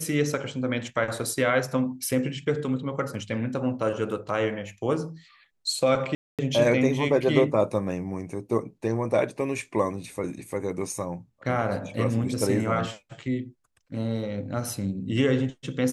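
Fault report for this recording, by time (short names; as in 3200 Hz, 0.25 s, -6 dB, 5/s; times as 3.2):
6.15–6.39 gap 0.237 s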